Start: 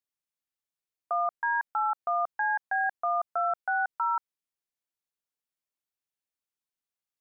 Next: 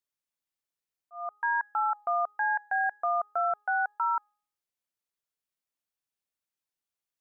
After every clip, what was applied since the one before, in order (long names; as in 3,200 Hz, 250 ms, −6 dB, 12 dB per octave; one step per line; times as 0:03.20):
hum removal 415.6 Hz, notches 4
volume swells 346 ms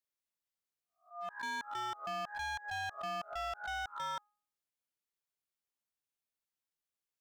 peak hold with a rise ahead of every peak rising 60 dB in 0.32 s
gain into a clipping stage and back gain 31.5 dB
level −5 dB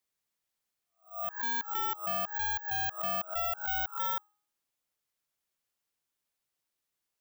bad sample-rate conversion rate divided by 2×, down none, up zero stuff
level +3.5 dB